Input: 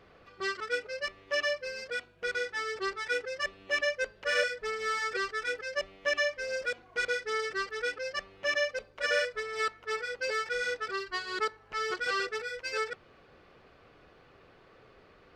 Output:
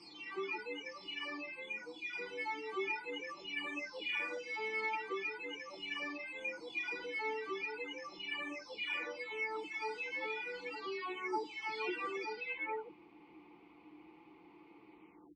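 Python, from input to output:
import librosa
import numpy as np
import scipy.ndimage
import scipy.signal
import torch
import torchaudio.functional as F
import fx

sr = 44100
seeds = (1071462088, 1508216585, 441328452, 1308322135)

y = fx.spec_delay(x, sr, highs='early', ms=719)
y = fx.vowel_filter(y, sr, vowel='u')
y = y * 10.0 ** (14.5 / 20.0)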